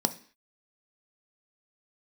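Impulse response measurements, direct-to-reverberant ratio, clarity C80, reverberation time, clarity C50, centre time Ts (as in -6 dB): 9.0 dB, 21.0 dB, 0.45 s, 16.5 dB, 5 ms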